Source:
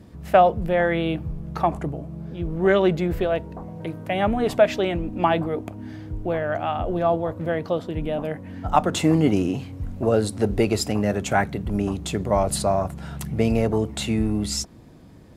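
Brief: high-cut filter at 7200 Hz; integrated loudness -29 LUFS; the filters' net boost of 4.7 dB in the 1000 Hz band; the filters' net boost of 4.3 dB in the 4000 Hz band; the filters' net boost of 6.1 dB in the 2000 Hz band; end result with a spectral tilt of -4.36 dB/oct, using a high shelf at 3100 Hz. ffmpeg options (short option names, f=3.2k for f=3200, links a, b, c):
-af "lowpass=7.2k,equalizer=f=1k:t=o:g=6,equalizer=f=2k:t=o:g=5.5,highshelf=f=3.1k:g=-3.5,equalizer=f=4k:t=o:g=6.5,volume=-8dB"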